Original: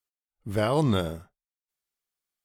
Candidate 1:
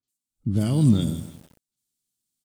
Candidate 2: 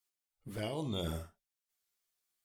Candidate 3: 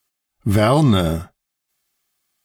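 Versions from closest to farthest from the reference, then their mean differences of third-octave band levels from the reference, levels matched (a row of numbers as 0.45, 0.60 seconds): 3, 2, 1; 3.0, 6.0, 8.5 decibels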